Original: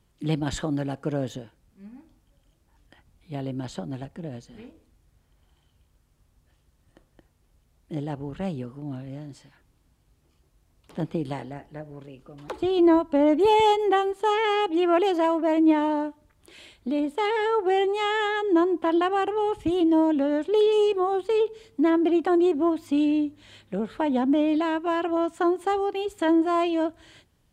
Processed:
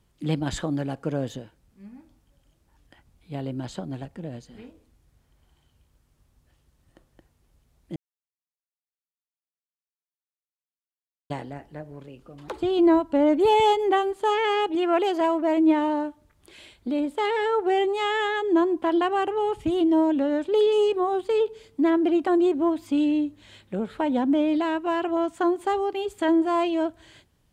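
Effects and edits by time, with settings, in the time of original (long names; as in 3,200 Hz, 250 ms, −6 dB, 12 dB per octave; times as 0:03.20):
0:07.96–0:11.30: silence
0:14.75–0:15.21: low-shelf EQ 180 Hz −9 dB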